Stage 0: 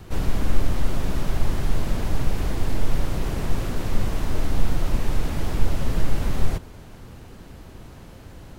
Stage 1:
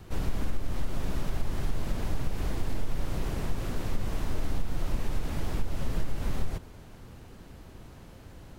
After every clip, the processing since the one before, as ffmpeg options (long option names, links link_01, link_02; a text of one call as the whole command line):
ffmpeg -i in.wav -af "acompressor=threshold=-15dB:ratio=6,volume=-5.5dB" out.wav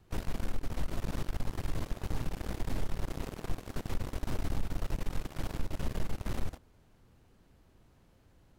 ffmpeg -i in.wav -af "aeval=exprs='0.178*(cos(1*acos(clip(val(0)/0.178,-1,1)))-cos(1*PI/2))+0.0355*(cos(7*acos(clip(val(0)/0.178,-1,1)))-cos(7*PI/2))':channel_layout=same,volume=-6.5dB" out.wav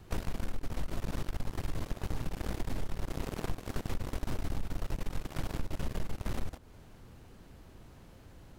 ffmpeg -i in.wav -af "acompressor=threshold=-40dB:ratio=4,volume=9.5dB" out.wav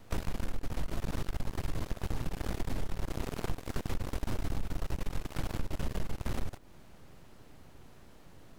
ffmpeg -i in.wav -af "aeval=exprs='abs(val(0))':channel_layout=same,volume=1dB" out.wav